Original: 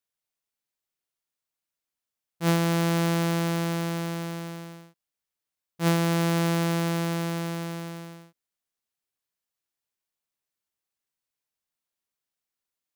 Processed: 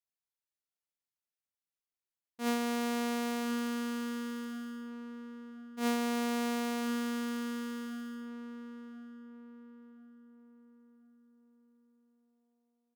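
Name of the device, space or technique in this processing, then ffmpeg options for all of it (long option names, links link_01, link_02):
chipmunk voice: -filter_complex "[0:a]asetrate=62367,aresample=44100,atempo=0.707107,asplit=2[link_01][link_02];[link_02]adelay=1036,lowpass=frequency=1300:poles=1,volume=-7.5dB,asplit=2[link_03][link_04];[link_04]adelay=1036,lowpass=frequency=1300:poles=1,volume=0.44,asplit=2[link_05][link_06];[link_06]adelay=1036,lowpass=frequency=1300:poles=1,volume=0.44,asplit=2[link_07][link_08];[link_08]adelay=1036,lowpass=frequency=1300:poles=1,volume=0.44,asplit=2[link_09][link_10];[link_10]adelay=1036,lowpass=frequency=1300:poles=1,volume=0.44[link_11];[link_01][link_03][link_05][link_07][link_09][link_11]amix=inputs=6:normalize=0,volume=-9dB"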